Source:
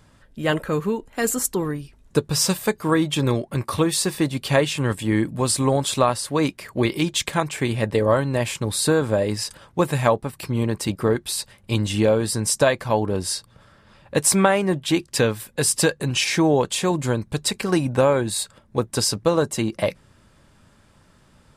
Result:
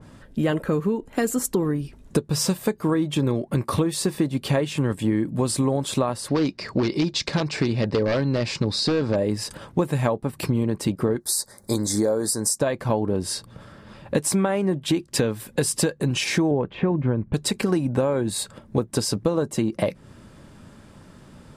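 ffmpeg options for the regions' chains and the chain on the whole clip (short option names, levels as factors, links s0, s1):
-filter_complex "[0:a]asettb=1/sr,asplit=3[s0][s1][s2];[s0]atrim=end=6.284[s3];[s1]atrim=start=6.28:end=9.16,asetpts=PTS-STARTPTS,afade=t=in:d=0.004:c=qsin,afade=t=out:st=2.876:d=0.004:c=qsin,bandreject=f=3200:w=9.8,aeval=exprs='0.188*(abs(mod(val(0)/0.188+3,4)-2)-1)':c=same,lowpass=f=4900:t=q:w=3.8[s4];[s2]atrim=start=9.156[s5];[s3][s4]acrossfade=d=0.004:c1=hsin:c2=qsin[s6];[s6][s5]acrossfade=d=0.004:c1=qsin:c2=hsin,asettb=1/sr,asplit=3[s7][s8][s9];[s7]atrim=end=11.204[s10];[s8]atrim=start=11.2:end=12.59,asetpts=PTS-STARTPTS,afade=t=in:d=0.004:c=qsin,afade=t=out:st=1.386:d=0.004:c=qsin,asuperstop=centerf=2800:order=4:qfactor=1.2,bass=f=250:g=-10,treble=f=4000:g=11[s11];[s9]atrim=start=12.586[s12];[s10][s11]acrossfade=d=0.004:c1=hsin:c2=qsin[s13];[s13][s12]acrossfade=d=0.004:c1=qsin:c2=hsin,asettb=1/sr,asplit=3[s14][s15][s16];[s14]atrim=end=16.514[s17];[s15]atrim=start=16.51:end=17.34,asetpts=PTS-STARTPTS,afade=t=in:d=0.004:c=qsin,afade=t=out:st=0.826:d=0.004:c=qsin,lowpass=f=2500:w=0.5412,lowpass=f=2500:w=1.3066,lowshelf=f=170:g=7[s18];[s16]atrim=start=17.336[s19];[s17][s18]acrossfade=d=0.004:c1=hsin:c2=qsin[s20];[s20][s19]acrossfade=d=0.004:c1=qsin:c2=hsin,equalizer=f=250:t=o:w=2.6:g=7.5,acompressor=threshold=0.0631:ratio=5,adynamicequalizer=threshold=0.00708:dfrequency=2000:dqfactor=0.7:tfrequency=2000:tqfactor=0.7:attack=5:release=100:ratio=0.375:range=1.5:mode=cutabove:tftype=highshelf,volume=1.58"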